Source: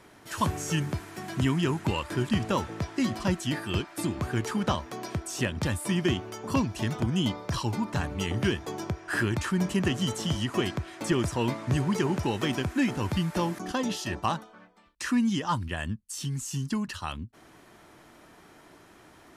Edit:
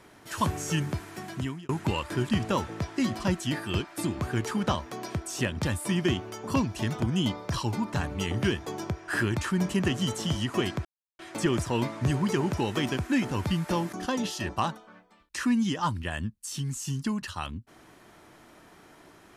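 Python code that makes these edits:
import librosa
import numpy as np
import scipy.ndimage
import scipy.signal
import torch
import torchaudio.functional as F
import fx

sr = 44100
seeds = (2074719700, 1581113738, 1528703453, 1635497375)

y = fx.edit(x, sr, fx.fade_out_span(start_s=1.17, length_s=0.52),
    fx.insert_silence(at_s=10.85, length_s=0.34), tone=tone)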